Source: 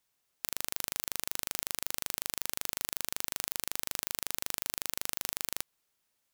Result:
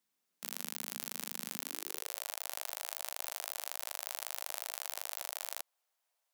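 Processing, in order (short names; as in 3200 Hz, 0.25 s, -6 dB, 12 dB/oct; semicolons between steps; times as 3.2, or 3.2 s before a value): harmoniser +3 st -6 dB, +5 st -13 dB; high-pass sweep 210 Hz -> 680 Hz, 1.54–2.27; gain -6 dB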